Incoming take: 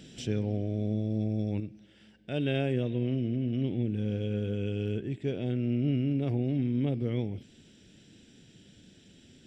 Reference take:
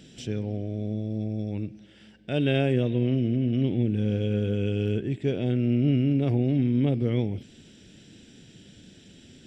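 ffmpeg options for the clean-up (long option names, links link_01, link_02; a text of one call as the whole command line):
ffmpeg -i in.wav -af "asetnsamples=nb_out_samples=441:pad=0,asendcmd='1.6 volume volume 5.5dB',volume=0dB" out.wav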